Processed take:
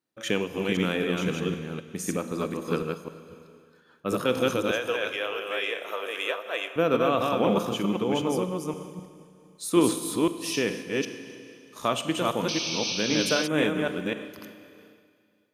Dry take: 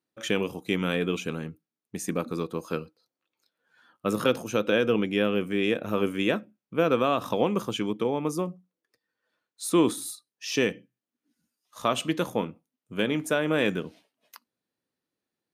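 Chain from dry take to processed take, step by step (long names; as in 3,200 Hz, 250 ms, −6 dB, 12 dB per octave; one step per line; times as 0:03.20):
delay that plays each chunk backwards 257 ms, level −2 dB
0:04.71–0:06.76: high-pass filter 540 Hz 24 dB per octave
four-comb reverb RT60 2.3 s, combs from 33 ms, DRR 9.5 dB
0:12.48–0:13.48: sound drawn into the spectrogram noise 2,200–6,300 Hz −30 dBFS
amplitude modulation by smooth noise, depth 60%
level +2 dB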